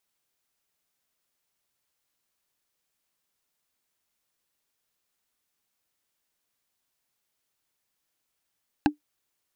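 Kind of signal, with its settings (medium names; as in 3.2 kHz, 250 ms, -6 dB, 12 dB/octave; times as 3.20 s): wood hit, lowest mode 297 Hz, decay 0.12 s, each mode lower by 2.5 dB, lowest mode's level -13 dB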